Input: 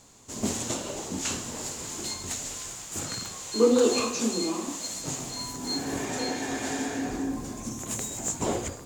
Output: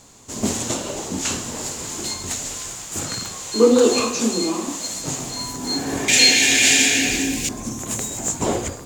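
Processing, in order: 6.08–7.49 resonant high shelf 1700 Hz +13.5 dB, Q 3; gain +6.5 dB

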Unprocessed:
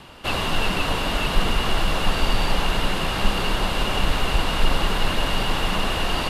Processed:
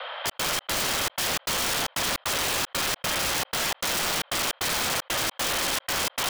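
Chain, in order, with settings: mistuned SSB +350 Hz 160–3300 Hz; on a send: echo with dull and thin repeats by turns 0.283 s, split 990 Hz, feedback 70%, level -6.5 dB; on the sum: step gate "xxx.xx.x" 153 bpm -60 dB; wrapped overs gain 21.5 dB; fast leveller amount 50%

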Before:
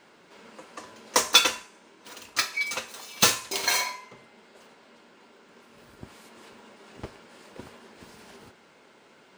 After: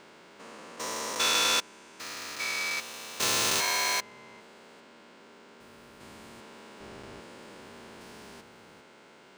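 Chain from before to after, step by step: stepped spectrum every 0.4 s; gain +3 dB

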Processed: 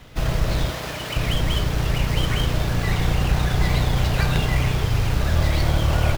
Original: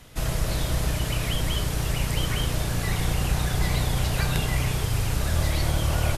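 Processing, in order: median filter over 5 samples; 0.7–1.16 HPF 460 Hz 6 dB/oct; gain +4.5 dB

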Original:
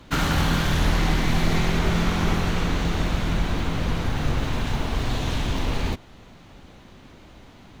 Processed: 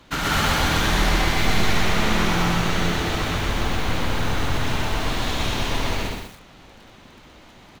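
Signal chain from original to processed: low shelf 400 Hz -7 dB; loudspeakers at several distances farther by 45 m 0 dB, 69 m -3 dB; lo-fi delay 0.122 s, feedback 35%, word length 7-bit, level -3 dB

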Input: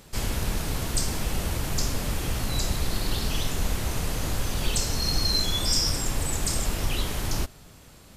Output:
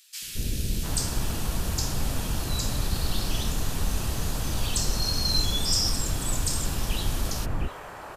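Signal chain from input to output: notch 2100 Hz, Q 15; three bands offset in time highs, lows, mids 0.22/0.7 s, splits 460/2100 Hz

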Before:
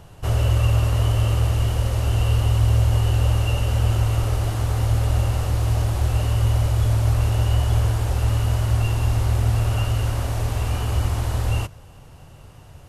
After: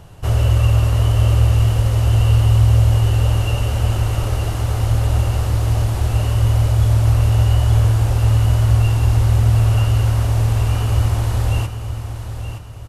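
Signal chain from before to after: bell 89 Hz +2.5 dB 1.8 oct; on a send: feedback echo 0.921 s, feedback 35%, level -9.5 dB; on the sum: gain +2 dB

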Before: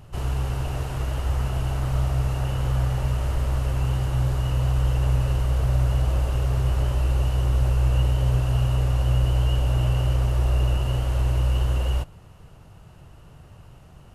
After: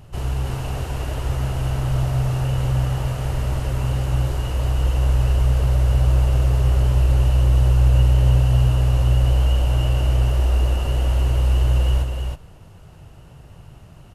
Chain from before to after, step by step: bell 1200 Hz -2.5 dB; on a send: echo 0.318 s -4 dB; on the sum: gain +2 dB

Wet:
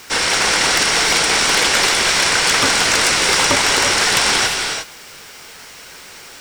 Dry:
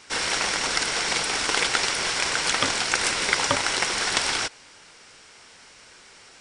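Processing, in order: sine folder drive 11 dB, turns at -3.5 dBFS; non-linear reverb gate 0.38 s rising, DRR 3.5 dB; bit-crush 6-bit; gain -5.5 dB

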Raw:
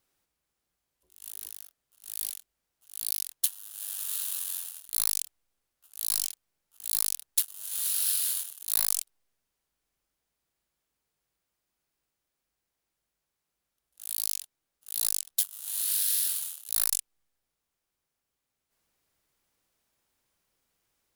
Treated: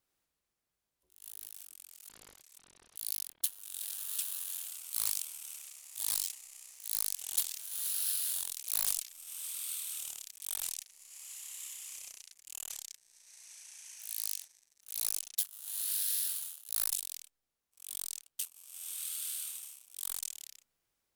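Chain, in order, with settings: 2.09–2.96 CVSD 32 kbps; echoes that change speed 98 ms, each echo -3 st, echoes 3, each echo -6 dB; gain -6 dB

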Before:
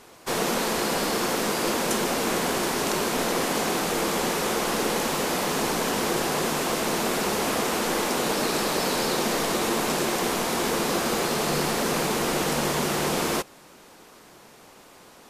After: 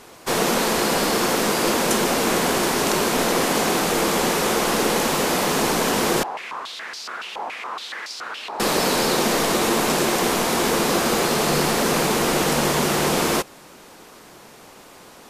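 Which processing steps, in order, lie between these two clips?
6.23–8.6 stepped band-pass 7.1 Hz 860–4800 Hz; gain +5 dB

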